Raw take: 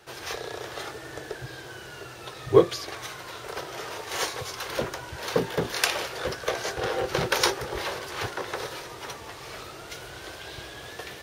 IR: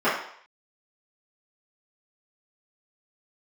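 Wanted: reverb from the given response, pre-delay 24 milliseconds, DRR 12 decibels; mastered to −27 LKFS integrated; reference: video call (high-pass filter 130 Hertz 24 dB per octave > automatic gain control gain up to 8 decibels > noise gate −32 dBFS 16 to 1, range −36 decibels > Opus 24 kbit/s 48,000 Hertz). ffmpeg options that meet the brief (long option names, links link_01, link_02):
-filter_complex "[0:a]asplit=2[link_01][link_02];[1:a]atrim=start_sample=2205,adelay=24[link_03];[link_02][link_03]afir=irnorm=-1:irlink=0,volume=-30.5dB[link_04];[link_01][link_04]amix=inputs=2:normalize=0,highpass=frequency=130:width=0.5412,highpass=frequency=130:width=1.3066,dynaudnorm=maxgain=8dB,agate=range=-36dB:threshold=-32dB:ratio=16,volume=1dB" -ar 48000 -c:a libopus -b:a 24k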